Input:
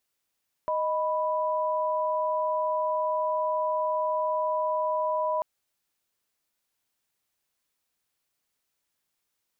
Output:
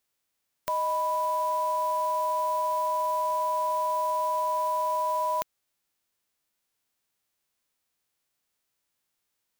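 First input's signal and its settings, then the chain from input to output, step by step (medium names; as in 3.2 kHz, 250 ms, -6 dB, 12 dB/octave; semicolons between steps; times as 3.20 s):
chord D#5/B5 sine, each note -27 dBFS 4.74 s
formants flattened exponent 0.3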